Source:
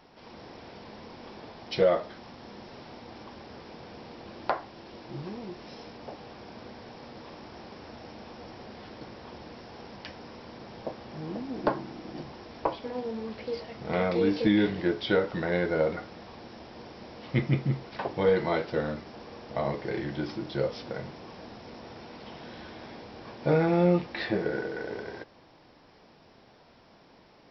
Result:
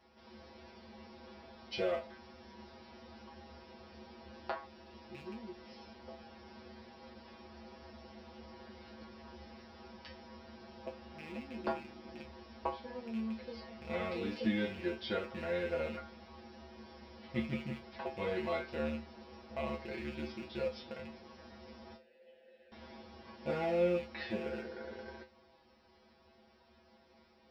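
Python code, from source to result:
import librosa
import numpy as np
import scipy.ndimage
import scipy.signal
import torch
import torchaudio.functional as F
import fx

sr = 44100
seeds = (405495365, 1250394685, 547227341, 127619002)

y = fx.rattle_buzz(x, sr, strikes_db=-37.0, level_db=-30.0)
y = fx.vowel_filter(y, sr, vowel='e', at=(21.96, 22.72))
y = fx.comb_fb(y, sr, f0_hz=74.0, decay_s=0.22, harmonics='odd', damping=0.0, mix_pct=100)
y = F.gain(torch.from_numpy(y), 1.5).numpy()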